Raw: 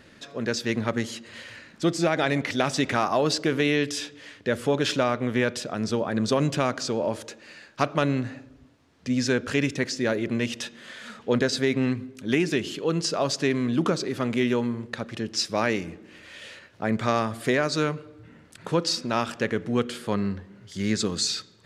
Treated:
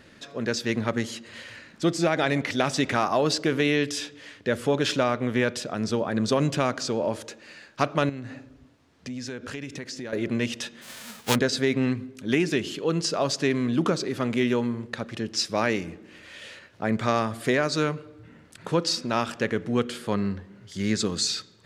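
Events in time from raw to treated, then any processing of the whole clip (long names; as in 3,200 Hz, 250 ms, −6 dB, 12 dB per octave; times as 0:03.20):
0:08.09–0:10.13: downward compressor 4 to 1, threshold −33 dBFS
0:10.81–0:11.34: spectral envelope flattened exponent 0.3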